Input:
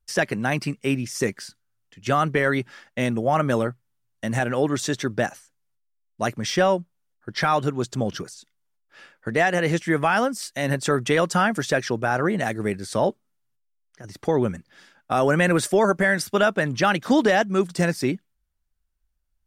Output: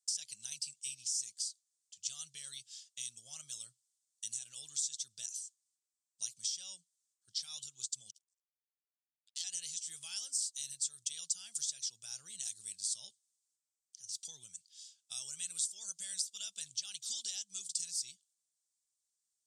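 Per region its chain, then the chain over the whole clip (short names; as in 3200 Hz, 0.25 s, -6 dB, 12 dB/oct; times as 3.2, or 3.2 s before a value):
8.11–9.44 HPF 320 Hz 24 dB/oct + power-law curve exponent 3
whole clip: EQ curve 140 Hz 0 dB, 290 Hz -24 dB, 1900 Hz -23 dB, 3300 Hz +4 dB, 8000 Hz +13 dB, 14000 Hz -17 dB; compressor 6:1, threshold -32 dBFS; differentiator; gain -1 dB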